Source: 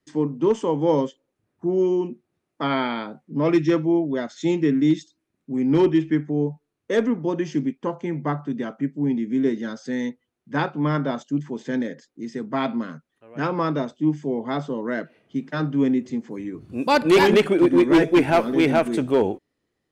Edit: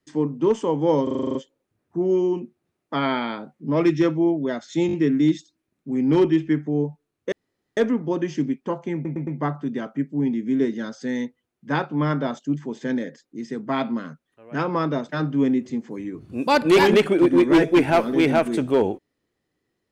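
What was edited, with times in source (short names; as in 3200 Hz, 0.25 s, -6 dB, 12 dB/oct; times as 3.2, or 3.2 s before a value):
1.03 stutter 0.04 s, 9 plays
4.55 stutter 0.02 s, 4 plays
6.94 insert room tone 0.45 s
8.11 stutter 0.11 s, 4 plays
13.93–15.49 cut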